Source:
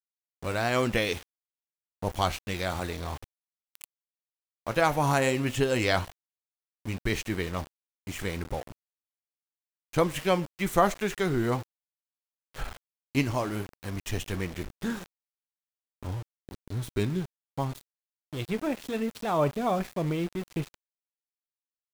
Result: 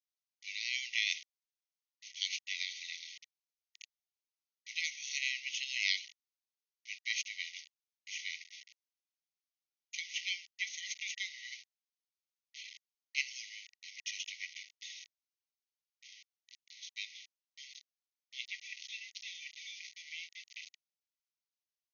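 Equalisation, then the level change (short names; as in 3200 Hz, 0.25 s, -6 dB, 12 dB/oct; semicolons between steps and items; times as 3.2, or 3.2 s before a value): brick-wall FIR band-pass 1900–6700 Hz; high shelf 4300 Hz +8 dB; -3.0 dB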